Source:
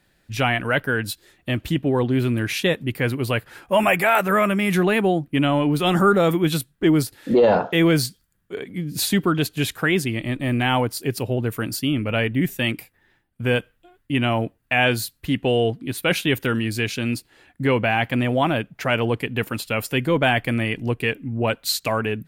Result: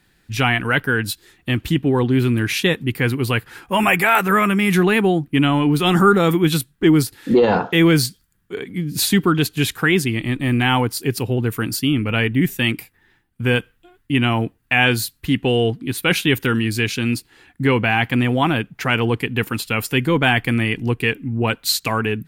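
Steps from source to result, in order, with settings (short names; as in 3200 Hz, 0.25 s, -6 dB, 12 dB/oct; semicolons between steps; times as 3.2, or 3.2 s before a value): bell 600 Hz -12 dB 0.35 oct; gain +4 dB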